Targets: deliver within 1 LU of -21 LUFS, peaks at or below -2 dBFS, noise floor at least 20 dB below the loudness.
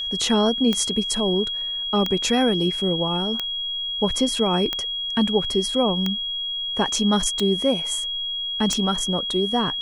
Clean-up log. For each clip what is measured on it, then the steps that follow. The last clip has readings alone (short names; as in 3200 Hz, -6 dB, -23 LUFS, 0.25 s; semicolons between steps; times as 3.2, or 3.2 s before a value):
clicks 7; steady tone 3300 Hz; tone level -25 dBFS; loudness -21.5 LUFS; peak -6.5 dBFS; loudness target -21.0 LUFS
-> de-click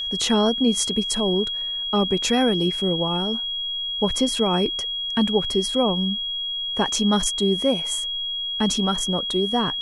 clicks 0; steady tone 3300 Hz; tone level -25 dBFS
-> notch 3300 Hz, Q 30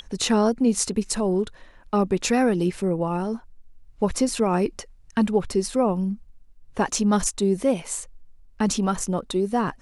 steady tone none; loudness -24.0 LUFS; peak -7.0 dBFS; loudness target -21.0 LUFS
-> gain +3 dB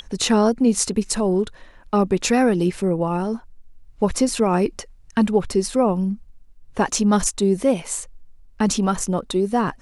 loudness -21.0 LUFS; peak -4.0 dBFS; noise floor -49 dBFS